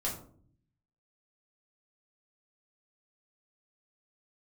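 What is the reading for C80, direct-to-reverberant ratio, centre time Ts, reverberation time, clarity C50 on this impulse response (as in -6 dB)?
11.0 dB, -5.5 dB, 28 ms, 0.55 s, 7.5 dB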